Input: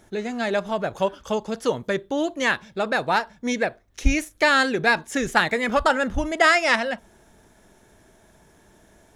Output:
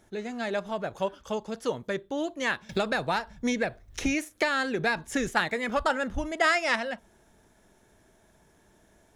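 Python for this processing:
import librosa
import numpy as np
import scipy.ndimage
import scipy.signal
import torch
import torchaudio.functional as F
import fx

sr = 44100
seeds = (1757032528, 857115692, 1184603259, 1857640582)

y = fx.band_squash(x, sr, depth_pct=100, at=(2.69, 5.29))
y = y * 10.0 ** (-6.5 / 20.0)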